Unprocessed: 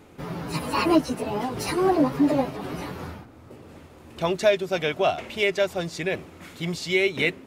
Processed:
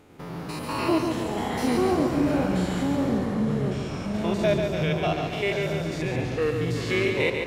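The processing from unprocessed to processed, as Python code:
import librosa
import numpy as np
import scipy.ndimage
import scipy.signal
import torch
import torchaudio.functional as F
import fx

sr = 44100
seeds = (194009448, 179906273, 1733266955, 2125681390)

y = fx.spec_steps(x, sr, hold_ms=100)
y = fx.echo_pitch(y, sr, ms=453, semitones=-5, count=3, db_per_echo=-3.0)
y = fx.echo_feedback(y, sr, ms=142, feedback_pct=54, wet_db=-5.5)
y = y * librosa.db_to_amplitude(-2.0)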